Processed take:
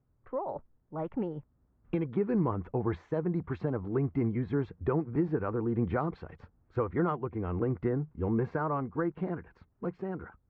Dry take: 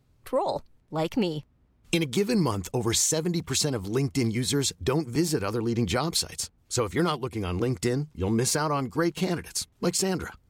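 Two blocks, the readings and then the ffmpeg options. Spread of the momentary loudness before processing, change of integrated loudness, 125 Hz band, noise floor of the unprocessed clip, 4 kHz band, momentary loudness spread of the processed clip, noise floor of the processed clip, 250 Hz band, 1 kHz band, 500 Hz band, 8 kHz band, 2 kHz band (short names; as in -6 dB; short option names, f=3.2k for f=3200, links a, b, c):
6 LU, -5.5 dB, -4.0 dB, -64 dBFS, under -30 dB, 9 LU, -71 dBFS, -4.0 dB, -5.0 dB, -4.5 dB, under -40 dB, -9.5 dB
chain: -af "lowpass=f=1.6k:w=0.5412,lowpass=f=1.6k:w=1.3066,dynaudnorm=f=200:g=17:m=5dB,volume=-8.5dB"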